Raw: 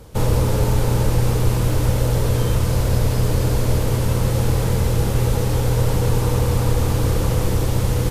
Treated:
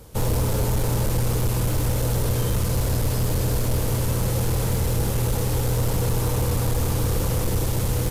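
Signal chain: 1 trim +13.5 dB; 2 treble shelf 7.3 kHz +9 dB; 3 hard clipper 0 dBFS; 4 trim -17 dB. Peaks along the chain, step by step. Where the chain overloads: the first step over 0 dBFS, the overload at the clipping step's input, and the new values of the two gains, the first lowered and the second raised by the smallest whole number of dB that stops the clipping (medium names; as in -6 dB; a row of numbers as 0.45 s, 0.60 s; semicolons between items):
+8.5 dBFS, +9.0 dBFS, 0.0 dBFS, -17.0 dBFS; step 1, 9.0 dB; step 1 +4.5 dB, step 4 -8 dB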